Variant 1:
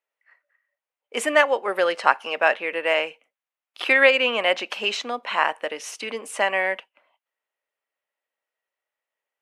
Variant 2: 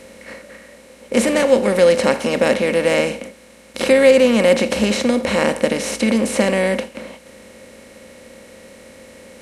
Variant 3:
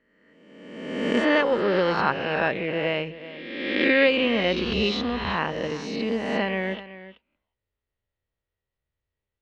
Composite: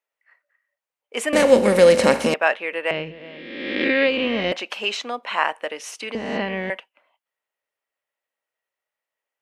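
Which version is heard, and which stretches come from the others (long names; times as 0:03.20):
1
0:01.33–0:02.34: punch in from 2
0:02.91–0:04.52: punch in from 3
0:06.15–0:06.70: punch in from 3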